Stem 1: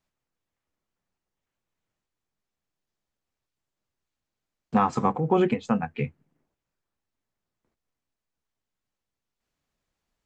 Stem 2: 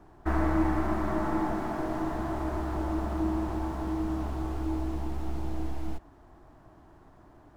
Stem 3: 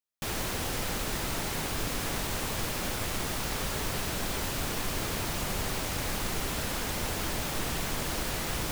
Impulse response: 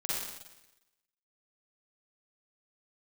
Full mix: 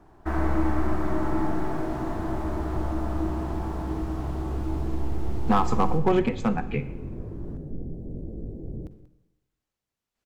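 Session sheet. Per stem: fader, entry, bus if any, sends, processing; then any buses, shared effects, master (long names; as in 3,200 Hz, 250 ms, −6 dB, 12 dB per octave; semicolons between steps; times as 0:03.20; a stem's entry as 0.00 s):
−0.5 dB, 0.75 s, send −17 dB, no echo send, asymmetric clip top −16.5 dBFS
−2.0 dB, 0.00 s, send −10 dB, no echo send, no processing
+2.5 dB, 0.15 s, send −16 dB, echo send −14.5 dB, inverse Chebyshev low-pass filter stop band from 1,100 Hz, stop band 50 dB; chorus effect 1.1 Hz, delay 17.5 ms, depth 5.9 ms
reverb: on, RT60 1.0 s, pre-delay 40 ms
echo: single-tap delay 186 ms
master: no processing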